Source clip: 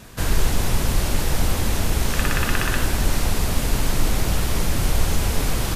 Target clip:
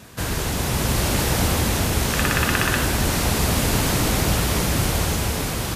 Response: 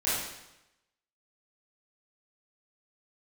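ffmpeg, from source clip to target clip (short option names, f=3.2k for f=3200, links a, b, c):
-af "dynaudnorm=f=240:g=7:m=11.5dB,highpass=69"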